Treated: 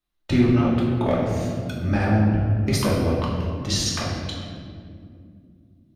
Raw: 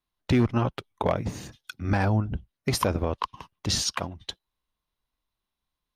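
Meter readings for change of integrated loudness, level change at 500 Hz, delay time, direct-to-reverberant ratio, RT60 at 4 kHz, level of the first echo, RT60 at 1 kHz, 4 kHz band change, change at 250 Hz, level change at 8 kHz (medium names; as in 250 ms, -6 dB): +5.0 dB, +5.0 dB, no echo, -5.5 dB, 1.3 s, no echo, 1.8 s, +2.5 dB, +7.5 dB, +2.0 dB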